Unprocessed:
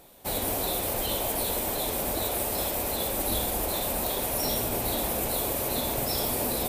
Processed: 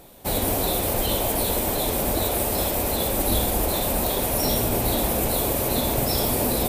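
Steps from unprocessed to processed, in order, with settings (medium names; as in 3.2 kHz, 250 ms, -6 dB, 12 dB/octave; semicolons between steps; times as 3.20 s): bass shelf 370 Hz +5.5 dB; trim +4 dB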